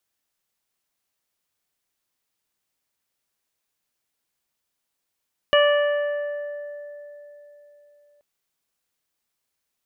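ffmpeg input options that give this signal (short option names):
-f lavfi -i "aevalsrc='0.2*pow(10,-3*t/3.75)*sin(2*PI*584*t)+0.0841*pow(10,-3*t/1.6)*sin(2*PI*1168*t)+0.0891*pow(10,-3*t/2.7)*sin(2*PI*1752*t)+0.0251*pow(10,-3*t/1.26)*sin(2*PI*2336*t)+0.1*pow(10,-3*t/1.16)*sin(2*PI*2920*t)':d=2.68:s=44100"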